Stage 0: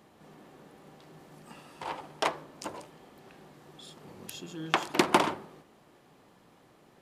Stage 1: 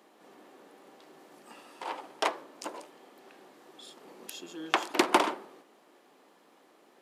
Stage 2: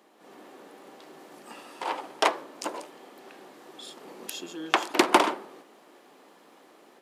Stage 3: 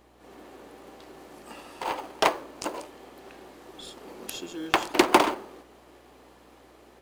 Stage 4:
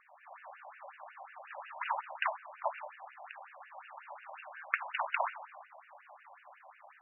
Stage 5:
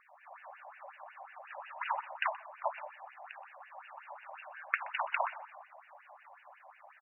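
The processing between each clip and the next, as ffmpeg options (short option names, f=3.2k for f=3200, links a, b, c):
-af "highpass=f=260:w=0.5412,highpass=f=260:w=1.3066"
-af "dynaudnorm=f=170:g=3:m=6dB"
-filter_complex "[0:a]aeval=exprs='val(0)+0.000562*(sin(2*PI*60*n/s)+sin(2*PI*2*60*n/s)/2+sin(2*PI*3*60*n/s)/3+sin(2*PI*4*60*n/s)/4+sin(2*PI*5*60*n/s)/5)':c=same,asplit=2[a][b];[b]acrusher=samples=24:mix=1:aa=0.000001,volume=-11dB[c];[a][c]amix=inputs=2:normalize=0"
-af "acompressor=threshold=-31dB:ratio=3,afftfilt=real='re*between(b*sr/1024,760*pow(2100/760,0.5+0.5*sin(2*PI*5.5*pts/sr))/1.41,760*pow(2100/760,0.5+0.5*sin(2*PI*5.5*pts/sr))*1.41)':imag='im*between(b*sr/1024,760*pow(2100/760,0.5+0.5*sin(2*PI*5.5*pts/sr))/1.41,760*pow(2100/760,0.5+0.5*sin(2*PI*5.5*pts/sr))*1.41)':win_size=1024:overlap=0.75,volume=5.5dB"
-af "aecho=1:1:125:0.0794"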